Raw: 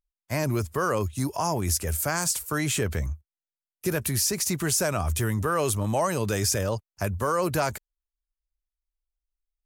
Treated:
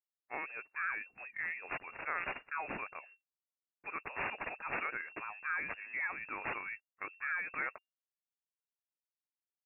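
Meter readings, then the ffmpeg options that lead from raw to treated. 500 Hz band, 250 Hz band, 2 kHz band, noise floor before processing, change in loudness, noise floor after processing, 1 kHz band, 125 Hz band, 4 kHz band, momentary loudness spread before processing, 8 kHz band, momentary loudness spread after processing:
-22.0 dB, -24.5 dB, -2.5 dB, under -85 dBFS, -13.0 dB, under -85 dBFS, -11.5 dB, -34.0 dB, under -25 dB, 7 LU, under -40 dB, 8 LU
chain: -af "aderivative,asoftclip=type=tanh:threshold=0.188,adynamicsmooth=sensitivity=4.5:basefreq=2200,lowpass=f=2400:t=q:w=0.5098,lowpass=f=2400:t=q:w=0.6013,lowpass=f=2400:t=q:w=0.9,lowpass=f=2400:t=q:w=2.563,afreqshift=-2800,volume=2.37"

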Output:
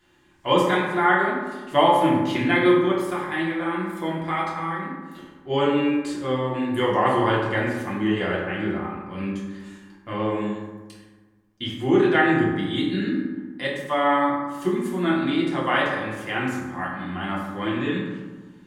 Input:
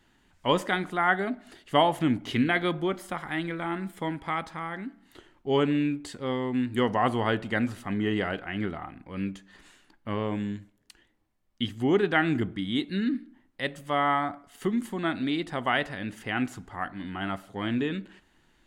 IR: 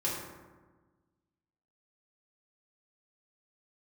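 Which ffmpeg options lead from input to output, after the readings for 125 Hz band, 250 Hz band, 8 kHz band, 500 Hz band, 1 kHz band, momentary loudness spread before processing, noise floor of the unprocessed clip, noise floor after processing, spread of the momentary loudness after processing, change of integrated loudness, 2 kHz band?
+4.0 dB, +5.0 dB, no reading, +6.5 dB, +6.0 dB, 11 LU, -66 dBFS, -52 dBFS, 14 LU, +5.5 dB, +5.0 dB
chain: -filter_complex "[0:a]lowshelf=f=390:g=-5.5[s0];[1:a]atrim=start_sample=2205[s1];[s0][s1]afir=irnorm=-1:irlink=0"

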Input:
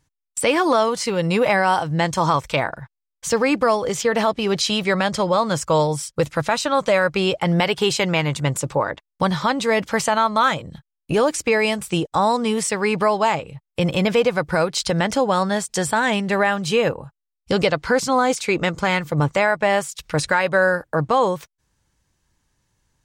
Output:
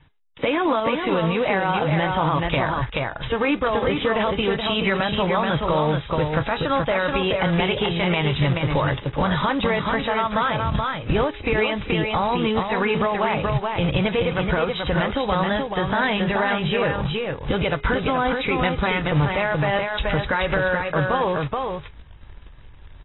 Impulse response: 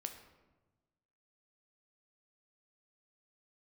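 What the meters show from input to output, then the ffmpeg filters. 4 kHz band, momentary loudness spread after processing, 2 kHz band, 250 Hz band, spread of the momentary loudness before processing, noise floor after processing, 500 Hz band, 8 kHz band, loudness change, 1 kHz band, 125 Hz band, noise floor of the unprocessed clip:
-1.5 dB, 3 LU, -1.5 dB, -0.5 dB, 6 LU, -42 dBFS, -2.5 dB, under -40 dB, -2.0 dB, -2.0 dB, +2.0 dB, -82 dBFS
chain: -af "acompressor=threshold=0.0316:ratio=16,aecho=1:1:428:0.531,adynamicequalizer=threshold=0.00282:dfrequency=280:dqfactor=5.6:tfrequency=280:tqfactor=5.6:attack=5:release=100:ratio=0.375:range=2:mode=boostabove:tftype=bell,bandreject=f=415.7:t=h:w=4,bandreject=f=831.4:t=h:w=4,bandreject=f=1247.1:t=h:w=4,bandreject=f=1662.8:t=h:w=4,bandreject=f=2078.5:t=h:w=4,bandreject=f=2494.2:t=h:w=4,bandreject=f=2909.9:t=h:w=4,bandreject=f=3325.6:t=h:w=4,bandreject=f=3741.3:t=h:w=4,bandreject=f=4157:t=h:w=4,bandreject=f=4572.7:t=h:w=4,bandreject=f=4988.4:t=h:w=4,bandreject=f=5404.1:t=h:w=4,bandreject=f=5819.8:t=h:w=4,bandreject=f=6235.5:t=h:w=4,bandreject=f=6651.2:t=h:w=4,bandreject=f=7066.9:t=h:w=4,bandreject=f=7482.6:t=h:w=4,bandreject=f=7898.3:t=h:w=4,bandreject=f=8314:t=h:w=4,bandreject=f=8729.7:t=h:w=4,bandreject=f=9145.4:t=h:w=4,bandreject=f=9561.1:t=h:w=4,bandreject=f=9976.8:t=h:w=4,bandreject=f=10392.5:t=h:w=4,bandreject=f=10808.2:t=h:w=4,bandreject=f=11223.9:t=h:w=4,bandreject=f=11639.6:t=h:w=4,bandreject=f=12055.3:t=h:w=4,bandreject=f=12471:t=h:w=4,bandreject=f=12886.7:t=h:w=4,bandreject=f=13302.4:t=h:w=4,bandreject=f=13718.1:t=h:w=4,bandreject=f=14133.8:t=h:w=4,bandreject=f=14549.5:t=h:w=4,bandreject=f=14965.2:t=h:w=4,bandreject=f=15380.9:t=h:w=4,bandreject=f=15796.6:t=h:w=4,asubboost=boost=6:cutoff=86,alimiter=level_in=1.33:limit=0.0631:level=0:latency=1:release=34,volume=0.75,lowpass=f=5600:w=0.5412,lowpass=f=5600:w=1.3066,acontrast=49,acrusher=bits=3:mode=log:mix=0:aa=0.000001,volume=2.51" -ar 22050 -c:a aac -b:a 16k

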